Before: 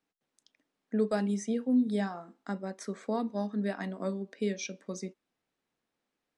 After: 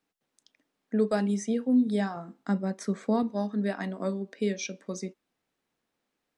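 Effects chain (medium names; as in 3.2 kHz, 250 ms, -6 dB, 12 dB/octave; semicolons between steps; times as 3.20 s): 2.16–3.23 s: peaking EQ 150 Hz +8.5 dB 1.4 oct; trim +3 dB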